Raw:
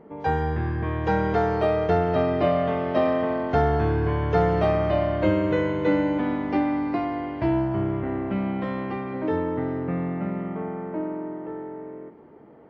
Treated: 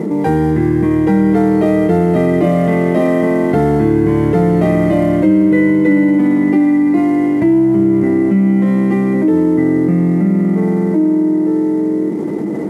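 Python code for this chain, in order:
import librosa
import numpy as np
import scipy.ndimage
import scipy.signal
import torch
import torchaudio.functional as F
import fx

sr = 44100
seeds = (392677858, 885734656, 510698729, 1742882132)

y = fx.cvsd(x, sr, bps=64000)
y = scipy.signal.sosfilt(scipy.signal.butter(2, 92.0, 'highpass', fs=sr, output='sos'), y)
y = fx.small_body(y, sr, hz=(200.0, 310.0, 2000.0), ring_ms=50, db=18)
y = fx.env_flatten(y, sr, amount_pct=70)
y = y * 10.0 ** (-6.5 / 20.0)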